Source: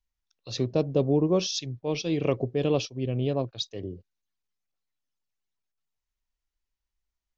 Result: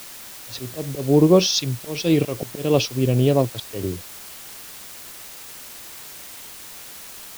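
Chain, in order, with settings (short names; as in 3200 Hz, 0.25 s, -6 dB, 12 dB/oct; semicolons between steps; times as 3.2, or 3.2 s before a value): auto swell 0.253 s; in parallel at -10.5 dB: requantised 6-bit, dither triangular; on the sum: gain +7.5 dB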